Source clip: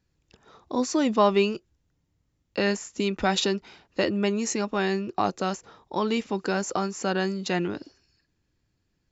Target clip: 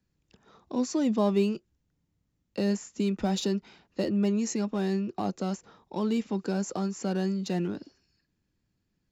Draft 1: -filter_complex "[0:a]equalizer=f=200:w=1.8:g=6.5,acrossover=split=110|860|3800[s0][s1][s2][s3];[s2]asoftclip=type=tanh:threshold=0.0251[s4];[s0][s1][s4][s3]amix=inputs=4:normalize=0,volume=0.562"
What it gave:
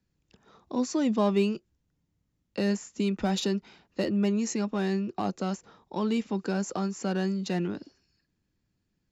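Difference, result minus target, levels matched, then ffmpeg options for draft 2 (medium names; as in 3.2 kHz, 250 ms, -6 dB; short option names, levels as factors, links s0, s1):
saturation: distortion -4 dB
-filter_complex "[0:a]equalizer=f=200:w=1.8:g=6.5,acrossover=split=110|860|3800[s0][s1][s2][s3];[s2]asoftclip=type=tanh:threshold=0.00944[s4];[s0][s1][s4][s3]amix=inputs=4:normalize=0,volume=0.562"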